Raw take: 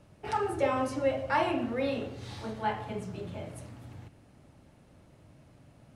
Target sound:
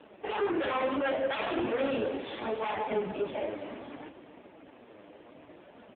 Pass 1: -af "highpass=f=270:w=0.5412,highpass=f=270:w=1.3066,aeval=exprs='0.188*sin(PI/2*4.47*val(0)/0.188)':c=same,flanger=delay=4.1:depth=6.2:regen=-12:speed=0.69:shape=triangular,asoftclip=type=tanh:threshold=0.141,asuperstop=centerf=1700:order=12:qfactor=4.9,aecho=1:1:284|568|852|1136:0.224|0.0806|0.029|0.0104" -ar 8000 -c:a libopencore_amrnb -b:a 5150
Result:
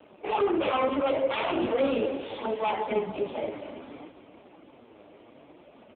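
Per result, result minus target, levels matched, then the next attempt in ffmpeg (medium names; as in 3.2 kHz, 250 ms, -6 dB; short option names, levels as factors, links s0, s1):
saturation: distortion -9 dB; 2 kHz band -4.0 dB
-af "highpass=f=270:w=0.5412,highpass=f=270:w=1.3066,aeval=exprs='0.188*sin(PI/2*4.47*val(0)/0.188)':c=same,flanger=delay=4.1:depth=6.2:regen=-12:speed=0.69:shape=triangular,asoftclip=type=tanh:threshold=0.0596,asuperstop=centerf=1700:order=12:qfactor=4.9,aecho=1:1:284|568|852|1136:0.224|0.0806|0.029|0.0104" -ar 8000 -c:a libopencore_amrnb -b:a 5150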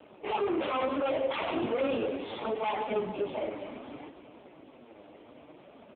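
2 kHz band -3.0 dB
-af "highpass=f=270:w=0.5412,highpass=f=270:w=1.3066,aeval=exprs='0.188*sin(PI/2*4.47*val(0)/0.188)':c=same,flanger=delay=4.1:depth=6.2:regen=-12:speed=0.69:shape=triangular,asoftclip=type=tanh:threshold=0.0596,aecho=1:1:284|568|852|1136:0.224|0.0806|0.029|0.0104" -ar 8000 -c:a libopencore_amrnb -b:a 5150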